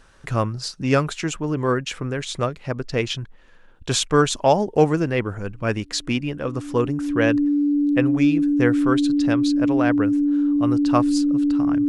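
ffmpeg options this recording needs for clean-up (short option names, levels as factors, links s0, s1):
-af "bandreject=f=290:w=30"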